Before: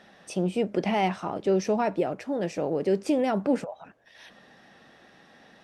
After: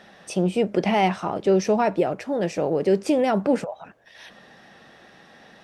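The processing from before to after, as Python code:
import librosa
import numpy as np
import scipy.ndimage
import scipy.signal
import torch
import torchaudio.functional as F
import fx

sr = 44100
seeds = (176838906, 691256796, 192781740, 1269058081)

y = fx.peak_eq(x, sr, hz=270.0, db=-3.5, octaves=0.33)
y = y * librosa.db_to_amplitude(5.0)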